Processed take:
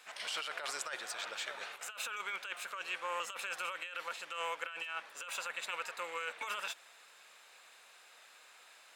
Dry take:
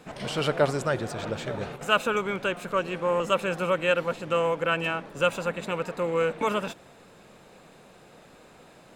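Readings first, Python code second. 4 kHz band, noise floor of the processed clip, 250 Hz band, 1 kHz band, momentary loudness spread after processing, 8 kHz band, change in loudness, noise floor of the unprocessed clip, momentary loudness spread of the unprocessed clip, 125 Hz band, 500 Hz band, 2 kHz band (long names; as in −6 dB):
−6.5 dB, −60 dBFS, −31.0 dB, −12.0 dB, 19 LU, −1.0 dB, −12.5 dB, −53 dBFS, 8 LU, below −40 dB, −22.5 dB, −9.0 dB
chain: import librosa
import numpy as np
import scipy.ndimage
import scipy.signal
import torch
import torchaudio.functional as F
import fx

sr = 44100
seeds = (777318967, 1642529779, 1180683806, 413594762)

y = scipy.signal.sosfilt(scipy.signal.butter(2, 1500.0, 'highpass', fs=sr, output='sos'), x)
y = fx.over_compress(y, sr, threshold_db=-37.0, ratio=-1.0)
y = F.gain(torch.from_numpy(y), -3.0).numpy()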